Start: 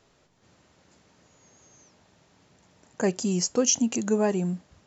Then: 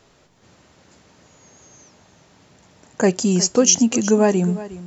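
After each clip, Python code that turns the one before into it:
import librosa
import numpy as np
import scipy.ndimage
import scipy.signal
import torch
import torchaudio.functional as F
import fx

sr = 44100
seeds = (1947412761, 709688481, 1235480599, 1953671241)

y = x + 10.0 ** (-16.0 / 20.0) * np.pad(x, (int(362 * sr / 1000.0), 0))[:len(x)]
y = y * 10.0 ** (8.0 / 20.0)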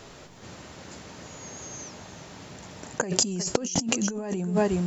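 y = fx.over_compress(x, sr, threshold_db=-28.0, ratio=-1.0)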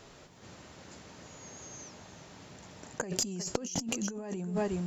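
y = fx.diode_clip(x, sr, knee_db=-10.0)
y = y * 10.0 ** (-7.0 / 20.0)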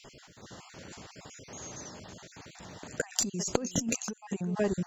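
y = fx.spec_dropout(x, sr, seeds[0], share_pct=30)
y = y * 10.0 ** (4.5 / 20.0)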